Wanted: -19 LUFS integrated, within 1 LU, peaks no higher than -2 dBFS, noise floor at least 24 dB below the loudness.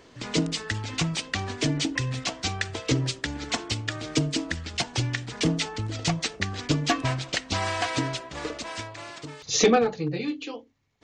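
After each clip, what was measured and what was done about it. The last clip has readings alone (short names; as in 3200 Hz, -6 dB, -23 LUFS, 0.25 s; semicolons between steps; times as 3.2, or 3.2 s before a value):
loudness -27.5 LUFS; peak -9.5 dBFS; loudness target -19.0 LUFS
-> gain +8.5 dB; limiter -2 dBFS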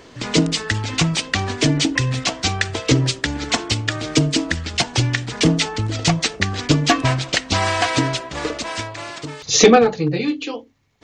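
loudness -19.0 LUFS; peak -2.0 dBFS; noise floor -44 dBFS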